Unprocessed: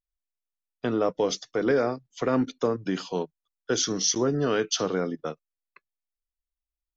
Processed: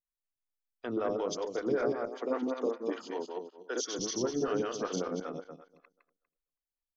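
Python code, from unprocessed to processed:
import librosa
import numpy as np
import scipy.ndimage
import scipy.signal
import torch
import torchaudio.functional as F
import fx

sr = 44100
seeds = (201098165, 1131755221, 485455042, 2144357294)

y = fx.reverse_delay_fb(x, sr, ms=121, feedback_pct=44, wet_db=-1.0)
y = fx.highpass(y, sr, hz=240.0, slope=24, at=(2.08, 3.99))
y = fx.stagger_phaser(y, sr, hz=5.2)
y = y * 10.0 ** (-7.0 / 20.0)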